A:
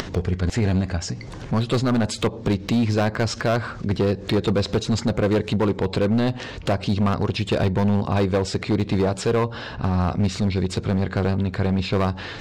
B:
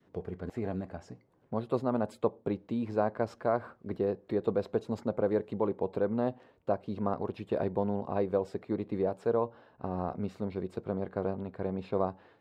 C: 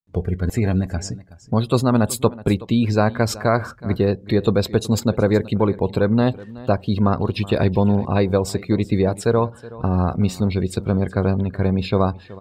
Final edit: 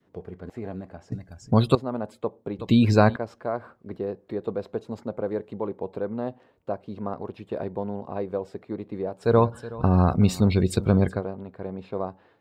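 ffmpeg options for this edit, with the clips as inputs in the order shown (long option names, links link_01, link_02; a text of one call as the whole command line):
ffmpeg -i take0.wav -i take1.wav -i take2.wav -filter_complex "[2:a]asplit=3[link_01][link_02][link_03];[1:a]asplit=4[link_04][link_05][link_06][link_07];[link_04]atrim=end=1.122[link_08];[link_01]atrim=start=1.118:end=1.752[link_09];[link_05]atrim=start=1.748:end=2.592[link_10];[link_02]atrim=start=2.588:end=3.162[link_11];[link_06]atrim=start=3.158:end=9.36[link_12];[link_03]atrim=start=9.2:end=11.23[link_13];[link_07]atrim=start=11.07[link_14];[link_08][link_09]acrossfade=duration=0.004:curve1=hsin:curve2=hsin[link_15];[link_15][link_10]acrossfade=duration=0.004:curve1=hsin:curve2=hsin[link_16];[link_16][link_11]acrossfade=duration=0.004:curve1=hsin:curve2=hsin[link_17];[link_17][link_12]acrossfade=duration=0.004:curve1=hsin:curve2=hsin[link_18];[link_18][link_13]acrossfade=duration=0.16:curve1=tri:curve2=tri[link_19];[link_19][link_14]acrossfade=duration=0.16:curve1=tri:curve2=tri" out.wav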